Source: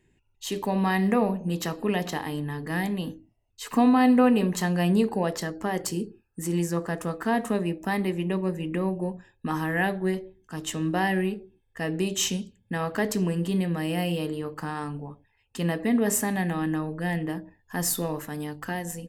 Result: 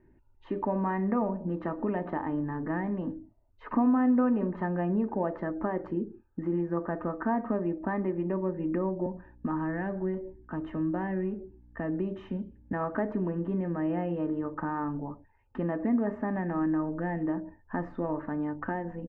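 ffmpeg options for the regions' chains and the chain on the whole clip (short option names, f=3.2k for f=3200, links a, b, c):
-filter_complex "[0:a]asettb=1/sr,asplit=3[a][b][c];[a]atrim=end=9.064[d];[b]atrim=start=9.06:end=12.73,asetpts=PTS-STARTPTS,afade=t=in:d=0.004:c=qsin,afade=t=out:st=3.666:d=0.004:c=qsin,acrossover=split=270|3000[e][f][g];[f]acompressor=threshold=-41dB:ratio=1.5:attack=3.2:release=140:knee=2.83:detection=peak[h];[e][h][g]amix=inputs=3:normalize=0,aeval=exprs='val(0)+0.001*(sin(2*PI*60*n/s)+sin(2*PI*2*60*n/s)/2+sin(2*PI*3*60*n/s)/3+sin(2*PI*4*60*n/s)/4+sin(2*PI*5*60*n/s)/5)':c=same[i];[c]atrim=start=12.726[j];[d][i]acrossfade=d=0.004:c1=hsin:c2=qsin[k];[k][j]acrossfade=d=0.004:c1=qsin:c2=hsin,acompressor=threshold=-36dB:ratio=2,lowpass=f=1.5k:w=0.5412,lowpass=f=1.5k:w=1.3066,aecho=1:1:3.3:0.43,volume=4.5dB"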